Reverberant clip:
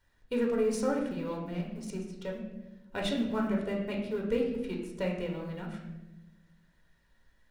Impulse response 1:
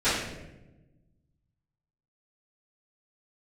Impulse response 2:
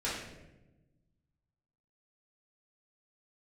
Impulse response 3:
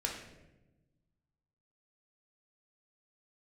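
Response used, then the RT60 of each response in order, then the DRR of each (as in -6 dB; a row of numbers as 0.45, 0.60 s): 3; 1.0, 1.0, 1.0 s; -18.0, -9.5, -1.5 dB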